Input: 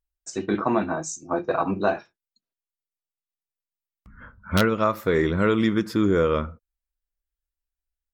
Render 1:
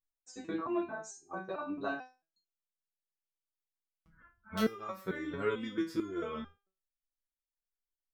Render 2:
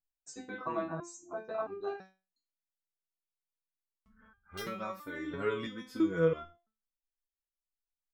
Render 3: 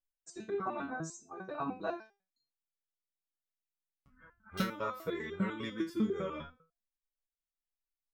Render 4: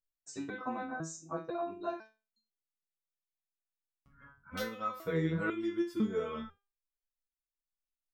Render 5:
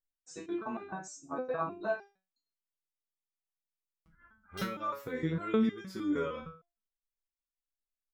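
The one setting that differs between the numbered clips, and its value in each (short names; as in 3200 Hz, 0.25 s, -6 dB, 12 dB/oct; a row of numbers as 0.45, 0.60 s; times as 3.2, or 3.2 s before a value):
stepped resonator, rate: 4.5, 3, 10, 2, 6.5 Hz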